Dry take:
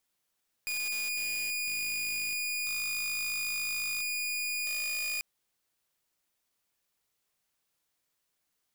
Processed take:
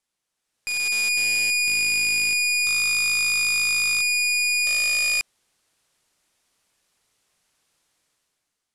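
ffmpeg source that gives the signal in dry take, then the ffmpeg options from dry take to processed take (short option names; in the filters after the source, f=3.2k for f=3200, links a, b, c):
-f lavfi -i "aevalsrc='0.0376*(2*mod(2450*t,1)-1)':d=4.54:s=44100"
-af "lowpass=f=11k:w=0.5412,lowpass=f=11k:w=1.3066,dynaudnorm=f=130:g=11:m=12dB"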